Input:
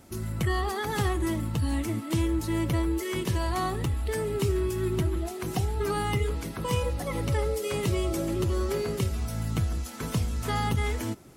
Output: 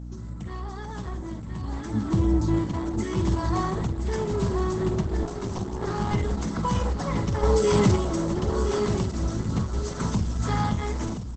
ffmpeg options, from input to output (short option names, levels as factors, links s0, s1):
-filter_complex "[0:a]asoftclip=type=tanh:threshold=0.0531,asettb=1/sr,asplit=3[s0][s1][s2];[s0]atrim=end=1.944[s3];[s1]atrim=start=1.94:end=2.59,asetpts=PTS-STARTPTS,afade=t=in:d=0.004:c=qsin,afade=t=out:st=0.646:d=0.004:c=qsin,lowshelf=f=410:g=11[s4];[s2]atrim=start=2.586[s5];[s3][s4]acrossfade=d=0.004:c1=hsin:c2=qsin[s6];[s6][s5]acrossfade=d=0.004:c1=qsin:c2=hsin,asettb=1/sr,asplit=3[s7][s8][s9];[s7]atrim=end=7.434[s10];[s8]atrim=start=7.43:end=7.96,asetpts=PTS-STARTPTS,afade=t=in:d=0.004:c=qsin,afade=t=out:st=0.526:d=0.004:c=qsin,acontrast=71[s11];[s9]atrim=start=7.956[s12];[s10][s11]acrossfade=d=0.004:c1=hsin:c2=qsin[s13];[s13][s12]acrossfade=d=0.004:c1=qsin:c2=hsin,asplit=2[s14][s15];[s15]adelay=48,volume=0.316[s16];[s14][s16]amix=inputs=2:normalize=0,asettb=1/sr,asplit=3[s17][s18][s19];[s17]atrim=end=5.234[s20];[s18]atrim=start=5.23:end=6.11,asetpts=PTS-STARTPTS,afade=t=in:d=0.004:c=qsin,afade=t=out:st=0.876:d=0.004:c=qsin,aeval=exprs='max(val(0),0)':c=same[s21];[s19]atrim=start=6.106[s22];[s20][s21]acrossfade=d=0.004:c1=hsin:c2=qsin[s23];[s23][s22]acrossfade=d=0.004:c1=qsin:c2=hsin,equalizer=f=200:t=o:w=0.33:g=9,equalizer=f=500:t=o:w=0.33:g=-3,equalizer=f=1000:t=o:w=0.33:g=7,equalizer=f=2500:t=o:w=0.33:g=-10,equalizer=f=6300:t=o:w=0.33:g=4,equalizer=f=12500:t=o:w=0.33:g=-11,aecho=1:1:1024:0.398,dynaudnorm=f=640:g=7:m=6.31,aeval=exprs='val(0)+0.0398*(sin(2*PI*60*n/s)+sin(2*PI*2*60*n/s)/2+sin(2*PI*3*60*n/s)/3+sin(2*PI*4*60*n/s)/4+sin(2*PI*5*60*n/s)/5)':c=same,volume=0.422" -ar 48000 -c:a libopus -b:a 12k